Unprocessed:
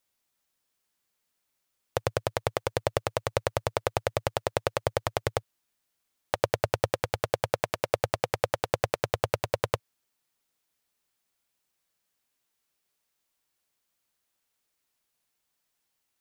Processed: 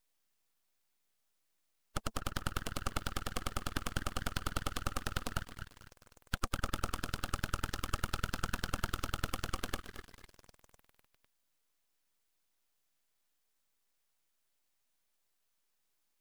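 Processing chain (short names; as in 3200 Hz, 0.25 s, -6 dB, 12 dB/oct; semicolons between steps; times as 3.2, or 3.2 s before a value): bin magnitudes rounded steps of 15 dB; low shelf 350 Hz -7 dB; notch 3100 Hz, Q 21; in parallel at +1 dB: limiter -18 dBFS, peak gain reduction 10 dB; on the sum: fixed phaser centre 300 Hz, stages 8; on a send: delay with a stepping band-pass 0.251 s, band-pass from 890 Hz, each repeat 0.7 oct, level -7 dB; on the sum: full-wave rectifier; lo-fi delay 0.221 s, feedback 35%, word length 7-bit, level -14 dB; gain -4.5 dB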